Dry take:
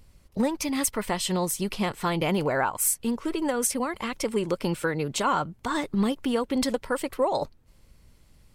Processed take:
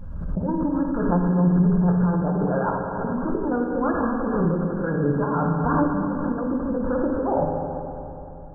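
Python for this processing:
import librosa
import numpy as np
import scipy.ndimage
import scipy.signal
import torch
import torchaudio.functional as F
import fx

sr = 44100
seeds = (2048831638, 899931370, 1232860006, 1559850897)

y = fx.spec_quant(x, sr, step_db=15)
y = fx.low_shelf(y, sr, hz=290.0, db=8.5)
y = fx.hum_notches(y, sr, base_hz=50, count=10)
y = fx.over_compress(y, sr, threshold_db=-26.0, ratio=-0.5)
y = fx.brickwall_lowpass(y, sr, high_hz=1700.0)
y = fx.rev_fdn(y, sr, rt60_s=3.1, lf_ratio=1.0, hf_ratio=0.95, size_ms=34.0, drr_db=-1.5)
y = fx.pre_swell(y, sr, db_per_s=33.0)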